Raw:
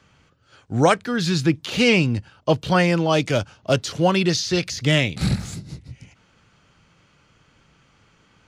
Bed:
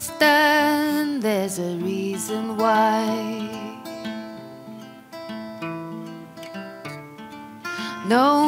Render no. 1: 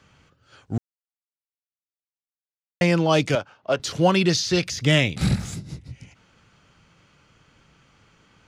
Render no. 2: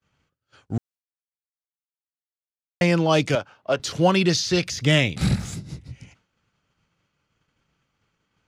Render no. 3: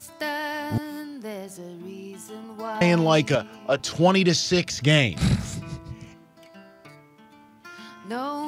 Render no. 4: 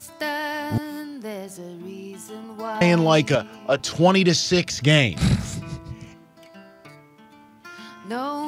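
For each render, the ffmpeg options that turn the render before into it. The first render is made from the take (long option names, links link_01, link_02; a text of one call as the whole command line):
ffmpeg -i in.wav -filter_complex "[0:a]asettb=1/sr,asplit=3[link_01][link_02][link_03];[link_01]atrim=end=3.354[link_04];[link_02]atrim=start=3.35:end=3.8,asetpts=PTS-STARTPTS,afade=type=in:duration=0.004:curve=qsin,afade=type=out:start_time=0.446:duration=0.004:curve=qsin,bandpass=frequency=1000:width_type=q:width=0.65[link_05];[link_03]atrim=start=3.796[link_06];[link_04][link_05]acrossfade=duration=0.004:curve1=hsin:curve2=qsin[link_07];[link_07][link_06]acrossfade=duration=0.004:curve1=qsin:curve2=hsin,asettb=1/sr,asplit=3[link_08][link_09][link_10];[link_08]atrim=end=4.654[link_11];[link_09]atrim=start=4.65:end=5.86,asetpts=PTS-STARTPTS,afade=type=in:duration=0.004:curve=qsin,afade=type=out:start_time=1.206:duration=0.004:curve=qsin,bandreject=frequency=4300:width=12[link_12];[link_10]atrim=start=5.856[link_13];[link_11][link_12]acrossfade=duration=0.004:curve1=hsin:curve2=qsin[link_14];[link_14][link_13]acrossfade=duration=0.004:curve1=qsin:curve2=hsin,asplit=3[link_15][link_16][link_17];[link_15]atrim=end=0.78,asetpts=PTS-STARTPTS,afade=type=out:start_time=0.776:duration=0.004:curve=hsin[link_18];[link_16]atrim=start=0.78:end=2.81,asetpts=PTS-STARTPTS,volume=0[link_19];[link_17]atrim=start=2.81,asetpts=PTS-STARTPTS,afade=type=in:duration=0.004:curve=hsin[link_20];[link_18][link_19][link_20]concat=n=3:v=0:a=1" out.wav
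ffmpeg -i in.wav -af "agate=range=-33dB:threshold=-47dB:ratio=3:detection=peak" out.wav
ffmpeg -i in.wav -i bed.wav -filter_complex "[1:a]volume=-13dB[link_01];[0:a][link_01]amix=inputs=2:normalize=0" out.wav
ffmpeg -i in.wav -af "volume=2dB" out.wav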